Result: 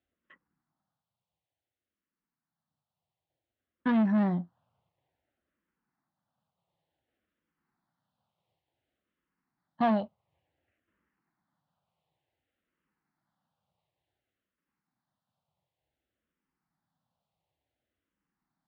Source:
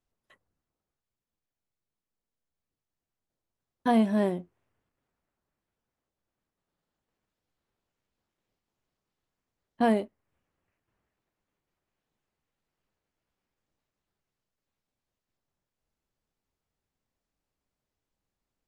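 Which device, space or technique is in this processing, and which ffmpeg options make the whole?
barber-pole phaser into a guitar amplifier: -filter_complex "[0:a]asplit=2[s0][s1];[s1]afreqshift=-0.56[s2];[s0][s2]amix=inputs=2:normalize=1,asoftclip=type=tanh:threshold=0.0473,highpass=88,equalizer=f=160:t=q:w=4:g=4,equalizer=f=420:t=q:w=4:g=-8,equalizer=f=790:t=q:w=4:g=4,equalizer=f=2400:t=q:w=4:g=-4,lowpass=f=3900:w=0.5412,lowpass=f=3900:w=1.3066,volume=1.78"

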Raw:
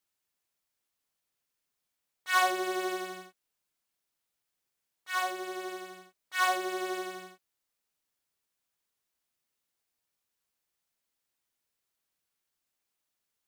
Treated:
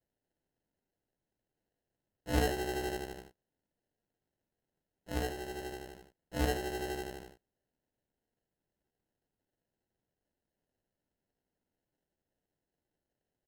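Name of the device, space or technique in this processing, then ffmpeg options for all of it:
crushed at another speed: -af "asetrate=55125,aresample=44100,acrusher=samples=30:mix=1:aa=0.000001,asetrate=35280,aresample=44100,volume=0.668"

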